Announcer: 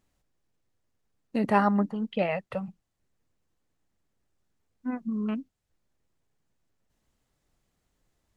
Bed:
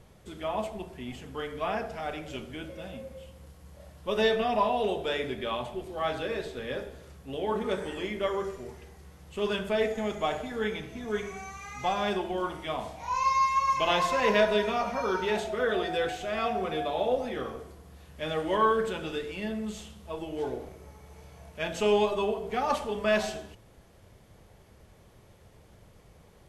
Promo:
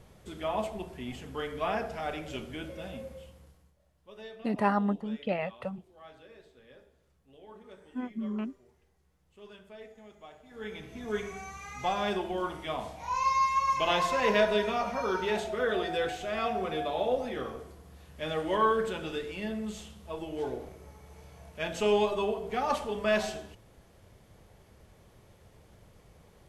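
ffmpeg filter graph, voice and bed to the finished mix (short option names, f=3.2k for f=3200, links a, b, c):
-filter_complex "[0:a]adelay=3100,volume=-4dB[a];[1:a]volume=19.5dB,afade=t=out:st=3.05:d=0.7:silence=0.0891251,afade=t=in:st=10.44:d=0.66:silence=0.105925[b];[a][b]amix=inputs=2:normalize=0"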